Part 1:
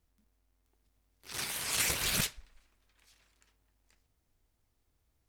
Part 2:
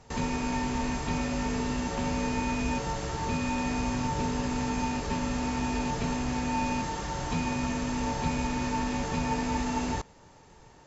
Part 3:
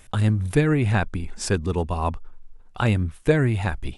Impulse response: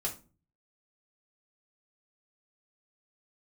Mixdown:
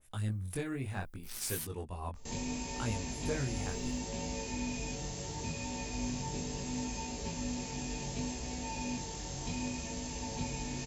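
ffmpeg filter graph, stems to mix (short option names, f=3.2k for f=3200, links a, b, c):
-filter_complex "[0:a]alimiter=level_in=3.5dB:limit=-24dB:level=0:latency=1:release=142,volume=-3.5dB,volume=-4.5dB,asplit=3[a][b][c];[a]atrim=end=1.65,asetpts=PTS-STARTPTS,afade=t=out:st=1.646:d=0.004:c=hsin[d];[b]atrim=start=1.65:end=3.56,asetpts=PTS-STARTPTS,volume=0[e];[c]atrim=start=3.56,asetpts=PTS-STARTPTS,afade=t=in:d=0.004:c=hsin[f];[d][e][f]concat=n=3:v=0:a=1[g];[1:a]equalizer=f=1.3k:w=1.6:g=-13.5,adelay=2150,volume=-4dB[h];[2:a]asoftclip=type=tanh:threshold=-10dB,adynamicequalizer=threshold=0.0112:dfrequency=1800:dqfactor=0.7:tfrequency=1800:tqfactor=0.7:attack=5:release=100:ratio=0.375:range=2:mode=cutabove:tftype=highshelf,volume=-13dB,asplit=2[i][j];[j]apad=whole_len=232991[k];[g][k]sidechaingate=range=-33dB:threshold=-47dB:ratio=16:detection=peak[l];[l][h][i]amix=inputs=3:normalize=0,aemphasis=mode=production:type=50fm,flanger=delay=17.5:depth=5.4:speed=0.7"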